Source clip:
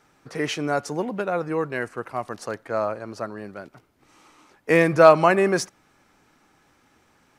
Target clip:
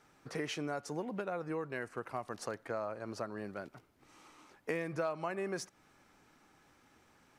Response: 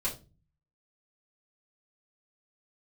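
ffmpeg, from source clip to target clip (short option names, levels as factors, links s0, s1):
-af "acompressor=threshold=0.0316:ratio=5,volume=0.562"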